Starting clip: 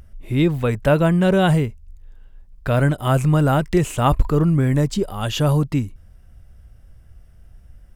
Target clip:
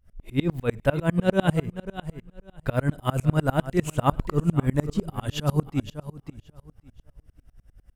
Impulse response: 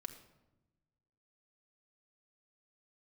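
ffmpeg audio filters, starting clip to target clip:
-filter_complex "[0:a]aecho=1:1:545|1090|1635:0.224|0.0515|0.0118,asplit=2[s0][s1];[1:a]atrim=start_sample=2205,atrim=end_sample=4410[s2];[s1][s2]afir=irnorm=-1:irlink=0,volume=0.355[s3];[s0][s3]amix=inputs=2:normalize=0,aeval=exprs='val(0)*pow(10,-31*if(lt(mod(-10*n/s,1),2*abs(-10)/1000),1-mod(-10*n/s,1)/(2*abs(-10)/1000),(mod(-10*n/s,1)-2*abs(-10)/1000)/(1-2*abs(-10)/1000))/20)':c=same"

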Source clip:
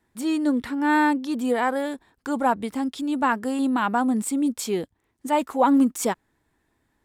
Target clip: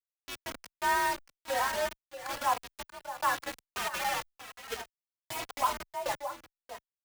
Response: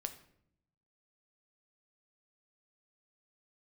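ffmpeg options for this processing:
-filter_complex "[0:a]asplit=3[s0][s1][s2];[s0]afade=t=out:st=3.75:d=0.02[s3];[s1]aeval=exprs='(mod(11.2*val(0)+1,2)-1)/11.2':c=same,afade=t=in:st=3.75:d=0.02,afade=t=out:st=4.21:d=0.02[s4];[s2]afade=t=in:st=4.21:d=0.02[s5];[s3][s4][s5]amix=inputs=3:normalize=0[s6];[1:a]atrim=start_sample=2205,atrim=end_sample=3528[s7];[s6][s7]afir=irnorm=-1:irlink=0,highpass=f=490:t=q:w=0.5412,highpass=f=490:t=q:w=1.307,lowpass=f=3100:t=q:w=0.5176,lowpass=f=3100:t=q:w=0.7071,lowpass=f=3100:t=q:w=1.932,afreqshift=52,acrusher=bits=4:mix=0:aa=0.000001,aecho=1:1:634:0.211,asoftclip=type=tanh:threshold=0.126,asplit=2[s8][s9];[s9]adelay=2.9,afreqshift=-1[s10];[s8][s10]amix=inputs=2:normalize=1"

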